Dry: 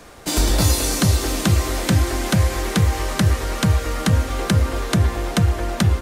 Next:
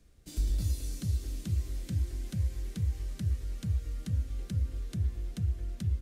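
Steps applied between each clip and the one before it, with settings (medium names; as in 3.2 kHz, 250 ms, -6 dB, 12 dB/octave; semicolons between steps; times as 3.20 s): amplifier tone stack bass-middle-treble 10-0-1; trim -3.5 dB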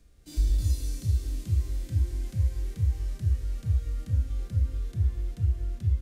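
harmonic-percussive split percussive -15 dB; trim +5.5 dB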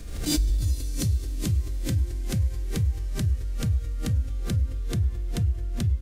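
swell ahead of each attack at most 48 dB/s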